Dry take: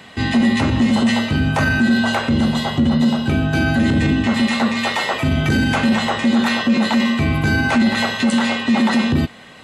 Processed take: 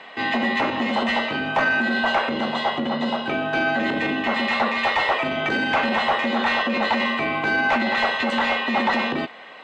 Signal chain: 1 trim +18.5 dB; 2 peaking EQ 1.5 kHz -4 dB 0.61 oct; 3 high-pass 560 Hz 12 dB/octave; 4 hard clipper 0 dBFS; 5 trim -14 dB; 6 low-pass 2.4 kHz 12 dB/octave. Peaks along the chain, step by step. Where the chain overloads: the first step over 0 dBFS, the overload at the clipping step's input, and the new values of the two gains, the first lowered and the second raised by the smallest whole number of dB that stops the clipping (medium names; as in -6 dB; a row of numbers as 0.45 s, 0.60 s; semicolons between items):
+12.5 dBFS, +12.5 dBFS, +9.5 dBFS, 0.0 dBFS, -14.0 dBFS, -13.5 dBFS; step 1, 9.5 dB; step 1 +8.5 dB, step 5 -4 dB